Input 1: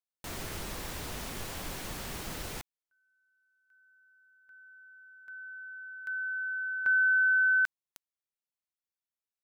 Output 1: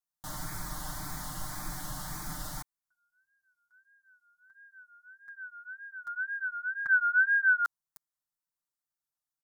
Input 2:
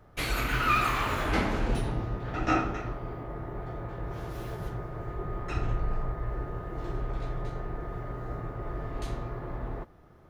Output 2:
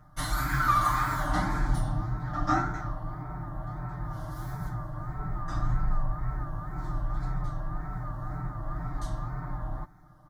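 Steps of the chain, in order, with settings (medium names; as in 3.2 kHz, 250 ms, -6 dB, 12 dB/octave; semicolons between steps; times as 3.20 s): static phaser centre 1.1 kHz, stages 4; wow and flutter 1.7 Hz 120 cents; comb 6.6 ms, depth 98%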